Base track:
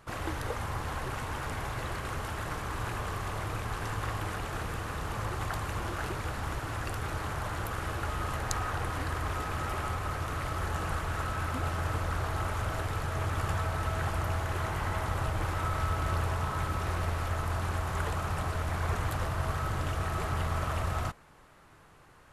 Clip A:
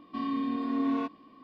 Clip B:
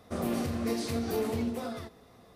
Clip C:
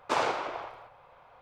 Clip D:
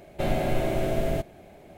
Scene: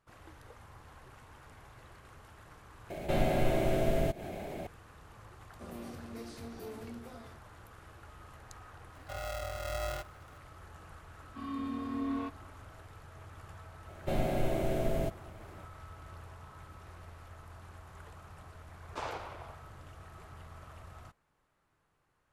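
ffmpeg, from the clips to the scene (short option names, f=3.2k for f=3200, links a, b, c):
-filter_complex "[4:a]asplit=2[a][b];[1:a]asplit=2[c][d];[0:a]volume=-19dB[e];[a]acompressor=mode=upward:threshold=-25dB:ratio=2.5:attack=3.2:release=140:knee=2.83:detection=peak[f];[c]aeval=exprs='val(0)*sgn(sin(2*PI*330*n/s))':c=same[g];[d]dynaudnorm=f=160:g=3:m=5dB[h];[b]equalizer=f=2.1k:w=0.53:g=-3[i];[e]asplit=2[j][k];[j]atrim=end=2.904[l];[f]atrim=end=1.77,asetpts=PTS-STARTPTS,volume=-3dB[m];[k]atrim=start=4.666[n];[2:a]atrim=end=2.35,asetpts=PTS-STARTPTS,volume=-14dB,afade=t=in:d=0.004:c=hsin,afade=t=out:st=2.346:d=0.004:c=hsin,adelay=242109S[o];[g]atrim=end=1.43,asetpts=PTS-STARTPTS,volume=-8dB,afade=t=in:d=0.004:c=hsin,afade=t=out:st=1.426:d=0.004:c=hsin,adelay=8950[p];[h]atrim=end=1.43,asetpts=PTS-STARTPTS,volume=-11.5dB,afade=t=in:d=0.004:c=hsin,afade=t=out:st=1.426:d=0.004:c=hsin,adelay=494802S[q];[i]atrim=end=1.77,asetpts=PTS-STARTPTS,volume=-5dB,afade=t=in:d=0.004:c=hsin,afade=t=out:st=1.766:d=0.004:c=hsin,adelay=13880[r];[3:a]atrim=end=1.41,asetpts=PTS-STARTPTS,volume=-12dB,afade=t=in:d=0.004:c=hsin,afade=t=out:st=1.406:d=0.004:c=hsin,adelay=18860[s];[l][m]acrossfade=d=0.004:c1=hsin:c2=hsin[t];[t][n]acrossfade=d=0.004:c1=hsin:c2=hsin[u];[u][o][p][q][r][s]amix=inputs=6:normalize=0"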